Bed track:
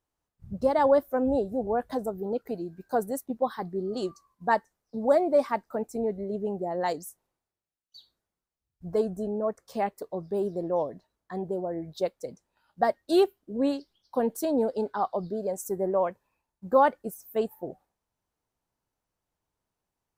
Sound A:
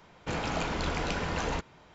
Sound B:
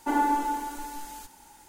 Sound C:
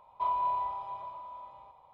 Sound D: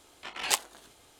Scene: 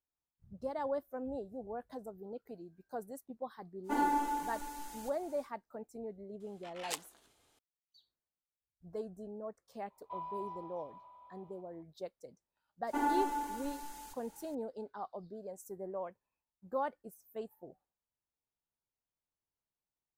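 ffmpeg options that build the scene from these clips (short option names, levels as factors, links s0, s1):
-filter_complex "[2:a]asplit=2[s0][s1];[0:a]volume=0.178[s2];[s0]atrim=end=1.68,asetpts=PTS-STARTPTS,volume=0.473,afade=t=in:d=0.1,afade=t=out:st=1.58:d=0.1,adelay=3830[s3];[4:a]atrim=end=1.19,asetpts=PTS-STARTPTS,volume=0.224,afade=t=in:d=0.004:c=hsin,afade=t=out:st=1.186:d=0.004:c=hsin,adelay=6400[s4];[3:a]atrim=end=1.93,asetpts=PTS-STARTPTS,volume=0.224,afade=t=in:d=0.004:c=hsin,afade=t=out:st=1.926:d=0.004:c=hsin,adelay=9900[s5];[s1]atrim=end=1.68,asetpts=PTS-STARTPTS,volume=0.422,afade=t=in:d=0.004:c=hsin,afade=t=out:st=1.676:d=0.004:c=hsin,adelay=12870[s6];[s2][s3][s4][s5][s6]amix=inputs=5:normalize=0"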